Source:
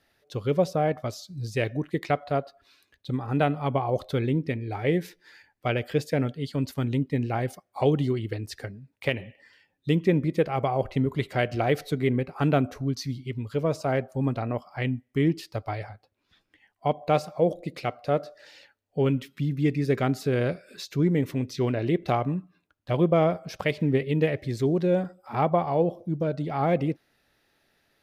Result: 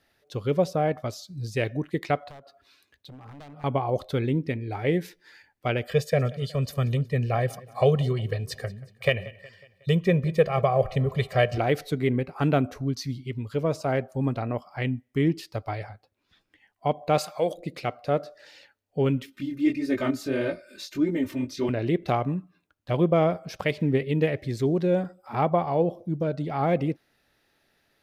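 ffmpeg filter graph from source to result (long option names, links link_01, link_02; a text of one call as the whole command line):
ffmpeg -i in.wav -filter_complex "[0:a]asettb=1/sr,asplit=3[link_01][link_02][link_03];[link_01]atrim=end=2.284[link_04];[link_02]atrim=start=2.28:end=3.64,asetpts=PTS-STARTPTS,afade=type=in:duration=0.004:curve=qsin,afade=type=out:start_time=1.356:duration=0.004:curve=qsin,highpass=45,acompressor=threshold=-42dB:ratio=4:attack=3.2:release=140:knee=1:detection=peak,aeval=exprs='0.0119*(abs(mod(val(0)/0.0119+3,4)-2)-1)':channel_layout=same[link_05];[link_03]atrim=start=3.636[link_06];[link_04][link_05]acrossfade=duration=0.004:curve1=hsin:curve2=qsin[link_07];[link_07][link_06]acrossfade=duration=0.004:curve1=qsin:curve2=hsin,asettb=1/sr,asplit=3[link_08][link_09][link_10];[link_08]atrim=end=5.874[link_11];[link_09]atrim=start=5.87:end=11.58,asetpts=PTS-STARTPTS,afade=type=in:duration=0.004:curve=qsin,afade=type=out:start_time=5.706:duration=0.004:curve=qsin,aecho=1:1:1.7:0.92,atrim=end_sample=251811,aecho=1:1:183|366|549|732:0.0891|0.0472|0.025|0.0133,atrim=end_sample=251811[link_12];[link_10]atrim=start=11.576[link_13];[link_11][link_12]acrossfade=duration=0.004:curve1=hsin:curve2=qsin[link_14];[link_14][link_13]acrossfade=duration=0.004:curve1=qsin:curve2=hsin,asettb=1/sr,asplit=3[link_15][link_16][link_17];[link_15]atrim=end=17.184[link_18];[link_16]atrim=start=17.18:end=17.58,asetpts=PTS-STARTPTS,afade=type=in:duration=0.004:curve=qsin,afade=type=out:start_time=0.396:duration=0.004:curve=qsin,tiltshelf=frequency=660:gain=-10,bandreject=frequency=5500:width=9.5[link_19];[link_17]atrim=start=17.576[link_20];[link_18][link_19]acrossfade=duration=0.004:curve1=hsin:curve2=qsin[link_21];[link_21][link_20]acrossfade=duration=0.004:curve1=qsin:curve2=hsin,asettb=1/sr,asplit=3[link_22][link_23][link_24];[link_22]atrim=end=19.264[link_25];[link_23]atrim=start=19.26:end=21.69,asetpts=PTS-STARTPTS,afade=type=in:duration=0.004:curve=qsin,afade=type=out:start_time=2.426:duration=0.004:curve=qsin,flanger=delay=18:depth=6.6:speed=1.6,aecho=1:1:3.3:0.95,atrim=end_sample=107163[link_26];[link_24]atrim=start=21.686[link_27];[link_25][link_26]acrossfade=duration=0.004:curve1=hsin:curve2=qsin[link_28];[link_28][link_27]acrossfade=duration=0.004:curve1=qsin:curve2=hsin" out.wav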